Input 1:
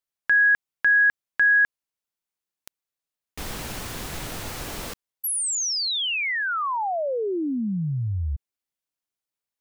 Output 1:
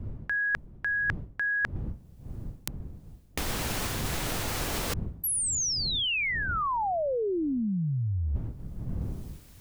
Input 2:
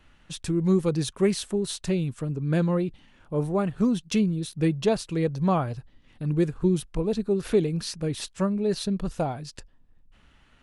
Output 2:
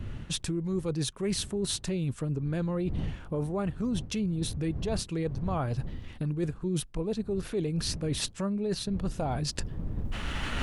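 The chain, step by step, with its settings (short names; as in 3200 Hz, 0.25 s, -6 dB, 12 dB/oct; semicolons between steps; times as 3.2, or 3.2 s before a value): recorder AGC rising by 21 dB/s, up to +26 dB; wind noise 110 Hz -35 dBFS; reverse; compressor 10:1, threshold -33 dBFS; reverse; gain +5.5 dB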